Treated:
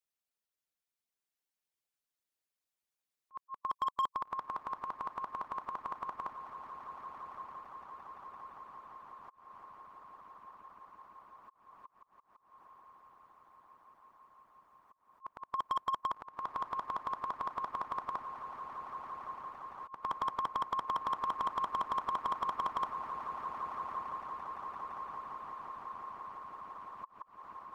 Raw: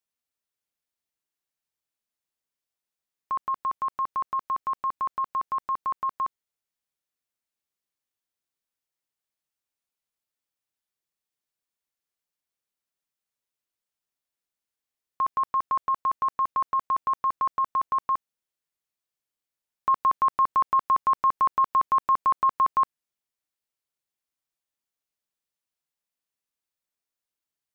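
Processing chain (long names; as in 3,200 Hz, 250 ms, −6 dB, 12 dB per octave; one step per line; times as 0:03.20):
low-shelf EQ 210 Hz −3 dB
feedback delay with all-pass diffusion 1,230 ms, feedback 74%, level −4 dB
volume swells 267 ms
harmonic and percussive parts rebalanced harmonic −17 dB
in parallel at −4 dB: wave folding −28 dBFS
on the sum: level −4 dB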